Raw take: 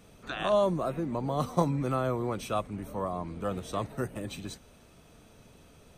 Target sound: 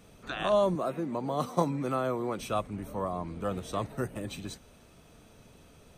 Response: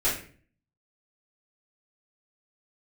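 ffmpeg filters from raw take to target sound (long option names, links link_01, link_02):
-filter_complex "[0:a]asettb=1/sr,asplit=3[link_01][link_02][link_03];[link_01]atrim=end=0.754[link_04];[link_02]atrim=start=0.75:end=2.39,asetpts=PTS-STARTPTS,afade=type=in:duration=0.004:curve=qsin,afade=type=out:start_time=1.636:duration=0.004:curve=qsin,highpass=170[link_05];[link_03]atrim=start=2.386[link_06];[link_04][link_05]acrossfade=duration=0.004:curve1=hsin:curve2=qsin[link_07];[link_07][link_06]acrossfade=duration=0.004:curve1=qsin:curve2=hsin"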